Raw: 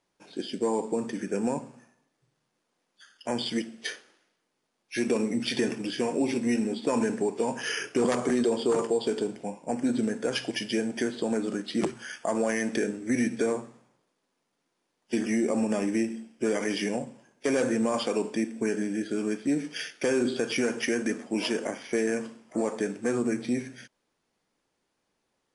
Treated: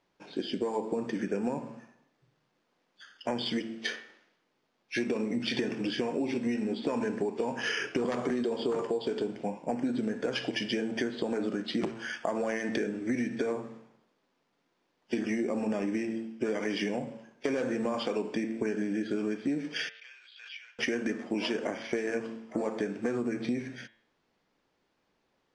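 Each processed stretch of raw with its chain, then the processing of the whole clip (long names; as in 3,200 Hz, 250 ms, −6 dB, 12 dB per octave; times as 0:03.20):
0:19.89–0:20.79: four-pole ladder high-pass 2,200 Hz, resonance 30% + head-to-tape spacing loss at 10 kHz 32 dB + background raised ahead of every attack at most 55 dB per second
whole clip: low-pass filter 4,400 Hz 12 dB per octave; hum removal 112.2 Hz, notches 34; downward compressor, threshold −31 dBFS; level +3.5 dB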